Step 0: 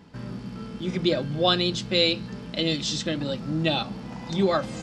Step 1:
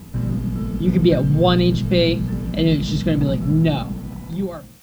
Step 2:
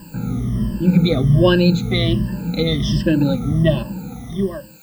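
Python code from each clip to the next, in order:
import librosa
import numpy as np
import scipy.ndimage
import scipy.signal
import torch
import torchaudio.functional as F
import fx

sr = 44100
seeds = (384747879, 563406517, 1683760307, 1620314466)

y1 = fx.fade_out_tail(x, sr, length_s=1.53)
y1 = fx.riaa(y1, sr, side='playback')
y1 = fx.dmg_noise_colour(y1, sr, seeds[0], colour='white', level_db=-55.0)
y1 = y1 * librosa.db_to_amplitude(3.5)
y2 = fx.spec_ripple(y1, sr, per_octave=1.3, drift_hz=-1.3, depth_db=24)
y2 = y2 * librosa.db_to_amplitude(-3.0)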